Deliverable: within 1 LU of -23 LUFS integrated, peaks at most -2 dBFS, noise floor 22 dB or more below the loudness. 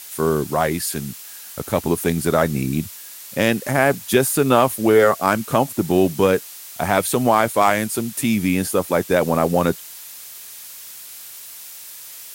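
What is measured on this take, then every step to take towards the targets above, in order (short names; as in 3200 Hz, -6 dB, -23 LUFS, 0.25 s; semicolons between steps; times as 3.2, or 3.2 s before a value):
noise floor -38 dBFS; noise floor target -41 dBFS; loudness -19.0 LUFS; peak -1.5 dBFS; loudness target -23.0 LUFS
-> denoiser 6 dB, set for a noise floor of -38 dBFS; gain -4 dB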